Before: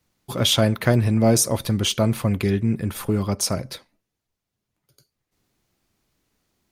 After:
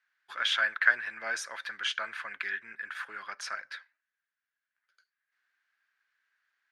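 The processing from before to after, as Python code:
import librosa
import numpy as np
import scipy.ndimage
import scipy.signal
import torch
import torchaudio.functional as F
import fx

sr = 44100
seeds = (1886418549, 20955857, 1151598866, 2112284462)

y = fx.ladder_bandpass(x, sr, hz=1700.0, resonance_pct=80)
y = y * 10.0 ** (7.0 / 20.0)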